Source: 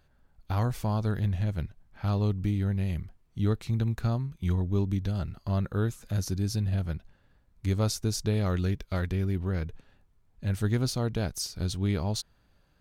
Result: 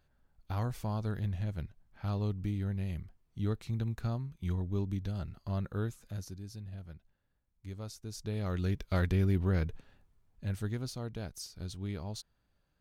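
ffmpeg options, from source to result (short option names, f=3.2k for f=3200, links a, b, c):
-af "volume=10dB,afade=t=out:st=5.8:d=0.61:silence=0.334965,afade=t=in:st=8.03:d=0.53:silence=0.316228,afade=t=in:st=8.56:d=0.46:silence=0.473151,afade=t=out:st=9.65:d=1.14:silence=0.281838"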